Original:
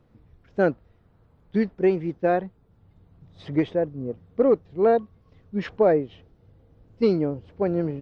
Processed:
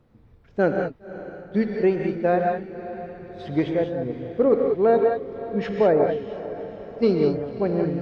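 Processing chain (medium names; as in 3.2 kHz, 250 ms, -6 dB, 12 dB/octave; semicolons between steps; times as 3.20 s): echo that smears into a reverb 558 ms, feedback 60%, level -14 dB; gated-style reverb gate 220 ms rising, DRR 2.5 dB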